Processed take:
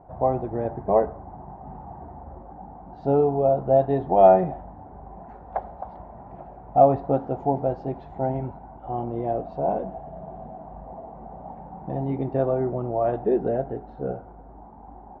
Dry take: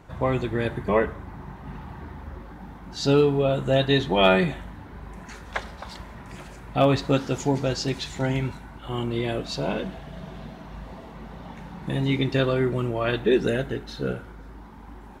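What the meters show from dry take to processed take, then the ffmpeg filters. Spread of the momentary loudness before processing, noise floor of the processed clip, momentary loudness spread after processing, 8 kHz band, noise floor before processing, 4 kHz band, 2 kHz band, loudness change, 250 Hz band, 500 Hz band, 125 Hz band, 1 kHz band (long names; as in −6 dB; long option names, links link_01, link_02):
21 LU, −45 dBFS, 24 LU, below −35 dB, −43 dBFS, below −30 dB, below −15 dB, +0.5 dB, −3.0 dB, +2.5 dB, −4.0 dB, +6.0 dB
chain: -af "lowpass=frequency=740:width_type=q:width=6,volume=-4.5dB"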